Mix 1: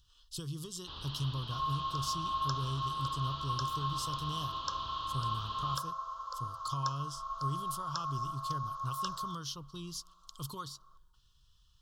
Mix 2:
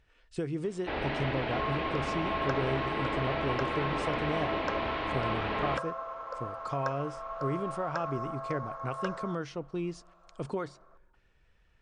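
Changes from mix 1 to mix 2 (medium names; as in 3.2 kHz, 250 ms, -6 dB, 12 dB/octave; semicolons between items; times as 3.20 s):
speech: add brick-wall FIR low-pass 9.7 kHz; first sound +7.5 dB; master: remove FFT filter 140 Hz 0 dB, 200 Hz -11 dB, 740 Hz -21 dB, 1.1 kHz +3 dB, 2.2 kHz -28 dB, 3.1 kHz +9 dB, 5.2 kHz +12 dB, 13 kHz +7 dB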